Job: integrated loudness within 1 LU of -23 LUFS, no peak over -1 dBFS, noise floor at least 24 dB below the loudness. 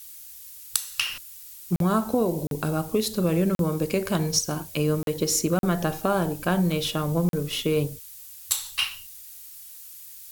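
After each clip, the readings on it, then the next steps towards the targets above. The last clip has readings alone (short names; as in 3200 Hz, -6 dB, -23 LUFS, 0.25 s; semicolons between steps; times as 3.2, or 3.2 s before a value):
dropouts 6; longest dropout 42 ms; noise floor -44 dBFS; noise floor target -50 dBFS; loudness -25.5 LUFS; peak -5.5 dBFS; loudness target -23.0 LUFS
-> interpolate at 1.76/2.47/3.55/5.03/5.59/7.29, 42 ms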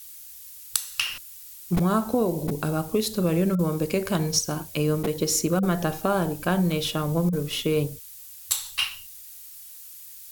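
dropouts 0; noise floor -44 dBFS; noise floor target -50 dBFS
-> denoiser 6 dB, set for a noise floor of -44 dBFS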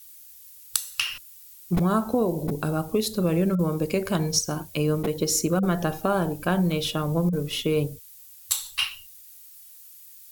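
noise floor -48 dBFS; noise floor target -50 dBFS
-> denoiser 6 dB, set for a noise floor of -48 dBFS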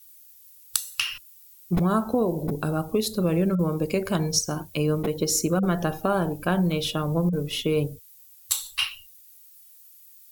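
noise floor -52 dBFS; loudness -25.5 LUFS; peak -5.5 dBFS; loudness target -23.0 LUFS
-> gain +2.5 dB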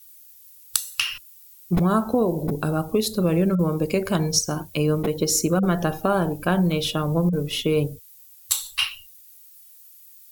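loudness -23.0 LUFS; peak -3.0 dBFS; noise floor -49 dBFS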